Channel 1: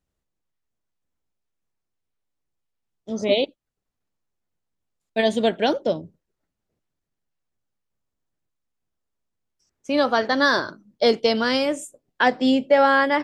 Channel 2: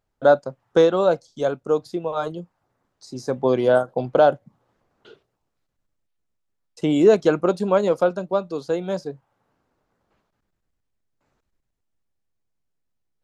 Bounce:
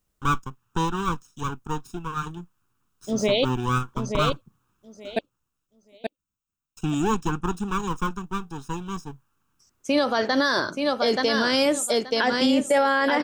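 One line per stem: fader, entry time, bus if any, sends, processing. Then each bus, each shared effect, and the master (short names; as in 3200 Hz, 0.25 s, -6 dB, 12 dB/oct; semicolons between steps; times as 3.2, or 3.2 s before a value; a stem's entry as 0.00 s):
+2.5 dB, 0.00 s, muted 5.19–7.72, no send, echo send -7 dB, dry
-2.0 dB, 0.00 s, no send, no echo send, minimum comb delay 0.75 ms; fixed phaser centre 3000 Hz, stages 8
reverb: off
echo: feedback echo 0.878 s, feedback 18%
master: high shelf 6900 Hz +11.5 dB; limiter -12 dBFS, peak gain reduction 10.5 dB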